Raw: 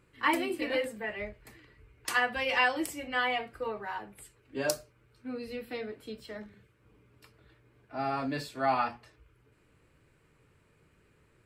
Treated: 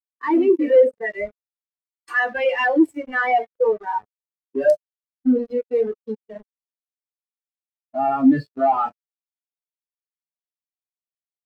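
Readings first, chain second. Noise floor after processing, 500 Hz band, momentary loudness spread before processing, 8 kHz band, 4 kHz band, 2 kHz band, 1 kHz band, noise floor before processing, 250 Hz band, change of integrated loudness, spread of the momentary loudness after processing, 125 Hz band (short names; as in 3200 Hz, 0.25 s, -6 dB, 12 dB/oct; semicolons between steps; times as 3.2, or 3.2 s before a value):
under -85 dBFS, +15.5 dB, 15 LU, under -10 dB, n/a, +6.0 dB, +9.0 dB, -67 dBFS, +17.0 dB, +12.0 dB, 14 LU, +6.5 dB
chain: companded quantiser 2-bit; spectral expander 2.5:1; gain -6 dB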